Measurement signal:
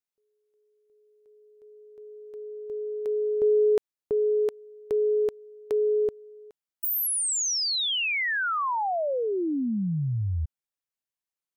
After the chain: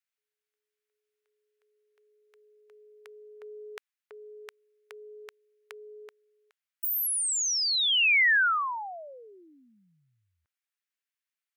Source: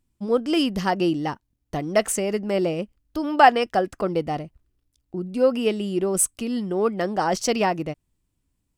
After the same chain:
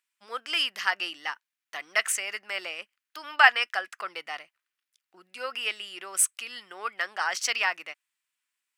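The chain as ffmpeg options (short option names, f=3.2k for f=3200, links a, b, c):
-af "highpass=f=1.5k:t=q:w=1.6,equalizer=f=2.4k:w=1.2:g=4.5,volume=-2dB"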